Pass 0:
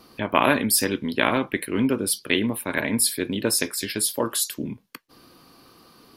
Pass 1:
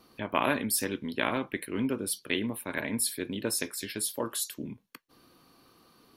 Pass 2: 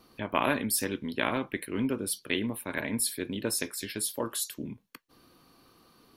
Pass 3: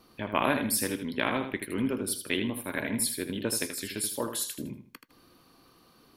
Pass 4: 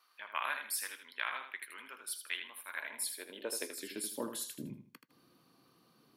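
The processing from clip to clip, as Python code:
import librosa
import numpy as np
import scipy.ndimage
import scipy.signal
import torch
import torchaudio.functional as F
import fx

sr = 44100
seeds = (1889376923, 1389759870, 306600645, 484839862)

y1 = fx.notch(x, sr, hz=4900.0, q=15.0)
y1 = F.gain(torch.from_numpy(y1), -8.0).numpy()
y2 = fx.low_shelf(y1, sr, hz=68.0, db=5.5)
y3 = fx.echo_feedback(y2, sr, ms=79, feedback_pct=29, wet_db=-8.0)
y4 = fx.filter_sweep_highpass(y3, sr, from_hz=1300.0, to_hz=140.0, start_s=2.68, end_s=4.58, q=1.5)
y4 = F.gain(torch.from_numpy(y4), -8.5).numpy()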